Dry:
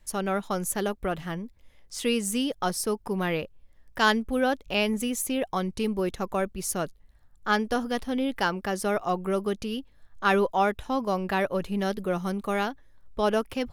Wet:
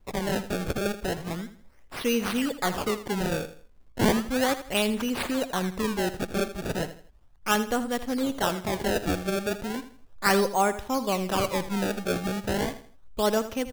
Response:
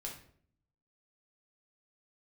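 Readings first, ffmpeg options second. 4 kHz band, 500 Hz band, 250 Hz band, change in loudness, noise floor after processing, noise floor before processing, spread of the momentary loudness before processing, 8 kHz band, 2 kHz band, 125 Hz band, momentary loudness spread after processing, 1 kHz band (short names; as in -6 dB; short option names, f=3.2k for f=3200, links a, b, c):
+1.5 dB, 0.0 dB, +0.5 dB, 0.0 dB, -53 dBFS, -58 dBFS, 8 LU, -0.5 dB, -1.0 dB, +2.0 dB, 8 LU, -1.0 dB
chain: -filter_complex "[0:a]acrusher=samples=25:mix=1:aa=0.000001:lfo=1:lforange=40:lforate=0.35,asplit=2[a][b];[b]aecho=0:1:81|162|243:0.224|0.0739|0.0244[c];[a][c]amix=inputs=2:normalize=0"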